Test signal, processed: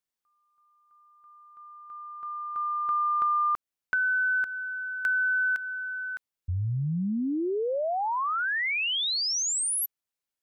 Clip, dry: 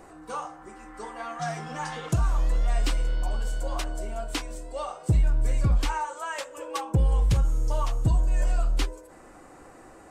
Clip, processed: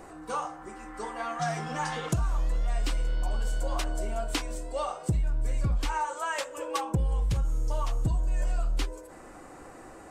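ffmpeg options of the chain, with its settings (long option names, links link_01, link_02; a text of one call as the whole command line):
ffmpeg -i in.wav -af "acompressor=threshold=-26dB:ratio=6,volume=2dB" out.wav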